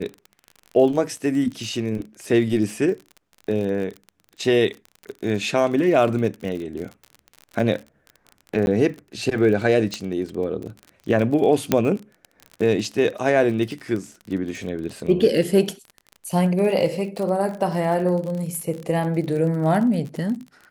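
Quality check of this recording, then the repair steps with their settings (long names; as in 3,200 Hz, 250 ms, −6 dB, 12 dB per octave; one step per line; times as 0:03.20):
surface crackle 37 per second −29 dBFS
0:08.66–0:08.67: drop-out 11 ms
0:09.94: click −13 dBFS
0:11.72: click −3 dBFS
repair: click removal
repair the gap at 0:08.66, 11 ms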